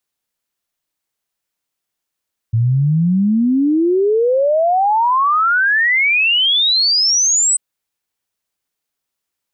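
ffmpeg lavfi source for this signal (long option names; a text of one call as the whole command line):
ffmpeg -f lavfi -i "aevalsrc='0.282*clip(min(t,5.04-t)/0.01,0,1)*sin(2*PI*110*5.04/log(8200/110)*(exp(log(8200/110)*t/5.04)-1))':duration=5.04:sample_rate=44100" out.wav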